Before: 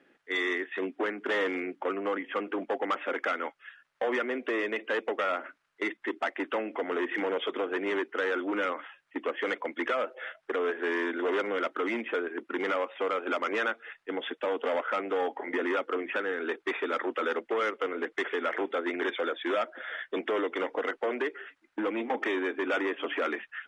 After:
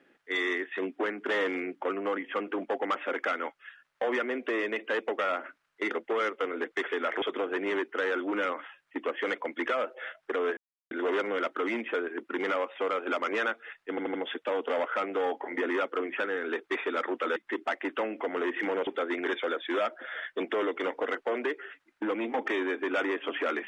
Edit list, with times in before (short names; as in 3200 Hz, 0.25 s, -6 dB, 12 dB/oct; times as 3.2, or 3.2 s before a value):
5.91–7.42 swap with 17.32–18.63
10.77–11.11 mute
14.1 stutter 0.08 s, 4 plays